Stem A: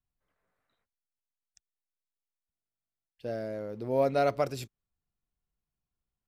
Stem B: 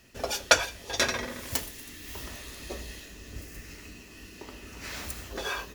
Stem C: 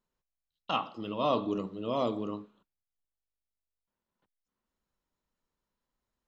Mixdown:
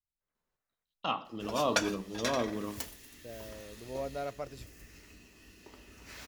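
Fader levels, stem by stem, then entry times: -11.5, -9.5, -2.0 dB; 0.00, 1.25, 0.35 s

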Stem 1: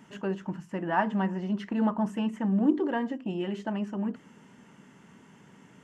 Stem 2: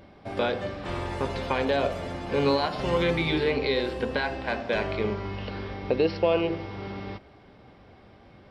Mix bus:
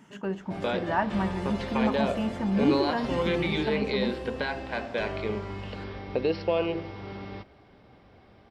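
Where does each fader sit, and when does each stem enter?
-0.5, -3.0 dB; 0.00, 0.25 s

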